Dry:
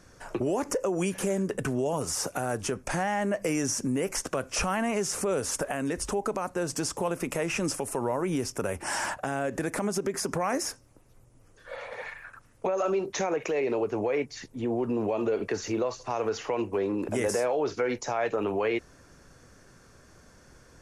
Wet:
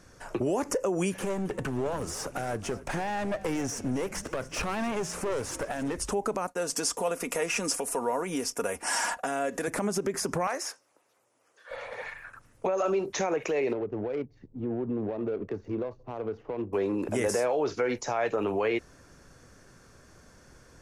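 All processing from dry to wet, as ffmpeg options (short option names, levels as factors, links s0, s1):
-filter_complex "[0:a]asettb=1/sr,asplit=3[s0][s1][s2];[s0]atrim=end=1.184[s3];[s1]atrim=start=1.18:end=5.97,asetpts=PTS-STARTPTS,afade=t=in:d=0.004:c=qsin,afade=t=out:st=4.786:d=0.004:c=qsin,bass=f=250:g=0,treble=f=4000:g=-7,aeval=exprs='clip(val(0),-1,0.0282)':c=same,asplit=7[s4][s5][s6][s7][s8][s9][s10];[s5]adelay=271,afreqshift=-56,volume=0.141[s11];[s6]adelay=542,afreqshift=-112,volume=0.0902[s12];[s7]adelay=813,afreqshift=-168,volume=0.0575[s13];[s8]adelay=1084,afreqshift=-224,volume=0.0372[s14];[s9]adelay=1355,afreqshift=-280,volume=0.0237[s15];[s10]adelay=1626,afreqshift=-336,volume=0.0151[s16];[s4][s11][s12][s13][s14][s15][s16]amix=inputs=7:normalize=0,atrim=end_sample=211239[s17];[s2]atrim=start=5.966[s18];[s3][s17]acrossfade=d=0.004:c1=hsin:c2=qsin[s19];[s19][s18]acrossfade=d=0.004:c1=qsin:c2=hsin,asettb=1/sr,asplit=3[s20][s21][s22];[s20]atrim=end=6.474[s23];[s21]atrim=start=6.47:end=9.68,asetpts=PTS-STARTPTS,afade=t=in:d=0.004:c=qsin,afade=t=out:st=3.206:d=0.004:c=qsin,agate=range=0.0224:threshold=0.00794:ratio=3:release=100:detection=peak,bass=f=250:g=-10,treble=f=4000:g=3,aecho=1:1:4.2:0.51,atrim=end_sample=141561[s24];[s22]atrim=start=9.676[s25];[s23][s24]acrossfade=d=0.004:c1=hsin:c2=qsin[s26];[s26][s25]acrossfade=d=0.004:c1=qsin:c2=hsin,asettb=1/sr,asplit=3[s27][s28][s29];[s27]atrim=end=10.474[s30];[s28]atrim=start=10.47:end=11.71,asetpts=PTS-STARTPTS,afade=t=in:d=0.004:c=qsin,afade=t=out:st=1.236:d=0.004:c=qsin,highpass=590,asoftclip=type=hard:threshold=0.0708,highshelf=f=8400:g=-7.5[s31];[s29]atrim=start=11.706[s32];[s30][s31]acrossfade=d=0.004:c1=hsin:c2=qsin[s33];[s33][s32]acrossfade=d=0.004:c1=qsin:c2=hsin,asettb=1/sr,asplit=3[s34][s35][s36];[s34]atrim=end=13.734[s37];[s35]atrim=start=13.73:end=16.73,asetpts=PTS-STARTPTS,afade=t=in:d=0.004:c=qsin,afade=t=out:st=2.996:d=0.004:c=qsin,equalizer=f=1200:w=0.5:g=-9.5,adynamicsmooth=sensitivity=2.5:basefreq=750[s38];[s36]atrim=start=16.726[s39];[s37][s38]acrossfade=d=0.004:c1=hsin:c2=qsin[s40];[s40][s39]acrossfade=d=0.004:c1=qsin:c2=hsin"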